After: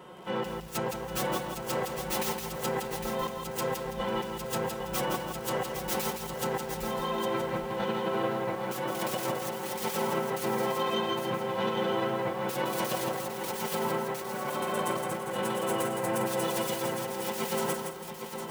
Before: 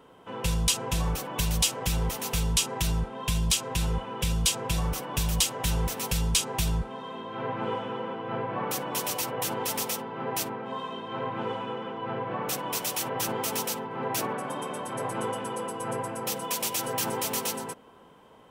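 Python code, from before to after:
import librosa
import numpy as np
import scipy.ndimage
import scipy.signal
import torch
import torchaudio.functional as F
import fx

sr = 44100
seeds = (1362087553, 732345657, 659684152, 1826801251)

p1 = fx.self_delay(x, sr, depth_ms=0.25)
p2 = scipy.signal.sosfilt(scipy.signal.butter(2, 61.0, 'highpass', fs=sr, output='sos'), p1)
p3 = p2 + 0.81 * np.pad(p2, (int(5.5 * sr / 1000.0), 0))[:len(p2)]
p4 = fx.over_compress(p3, sr, threshold_db=-34.0, ratio=-0.5)
p5 = p4 + fx.echo_single(p4, sr, ms=808, db=-7.5, dry=0)
y = fx.echo_crushed(p5, sr, ms=165, feedback_pct=35, bits=8, wet_db=-5)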